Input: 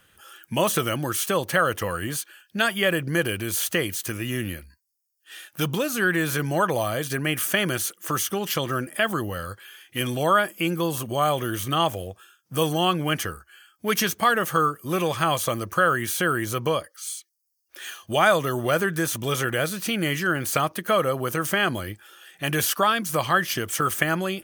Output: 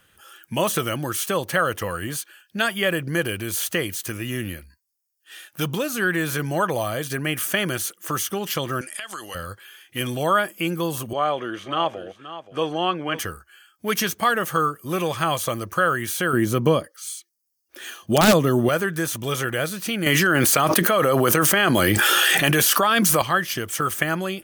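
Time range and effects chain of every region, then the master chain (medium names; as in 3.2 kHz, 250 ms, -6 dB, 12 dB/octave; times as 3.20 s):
8.81–9.35 s: frequency weighting ITU-R 468 + compression 16:1, threshold -28 dBFS
11.13–13.19 s: band-pass 250–3200 Hz + delay 526 ms -13.5 dB
16.33–18.69 s: integer overflow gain 10 dB + peaking EQ 220 Hz +11.5 dB 2.1 oct
20.06–23.22 s: high-pass 150 Hz + level flattener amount 100%
whole clip: none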